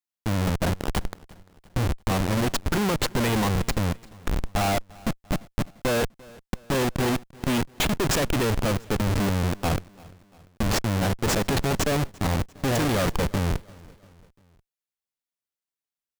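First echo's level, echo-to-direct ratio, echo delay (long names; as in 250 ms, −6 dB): −23.5 dB, −22.5 dB, 345 ms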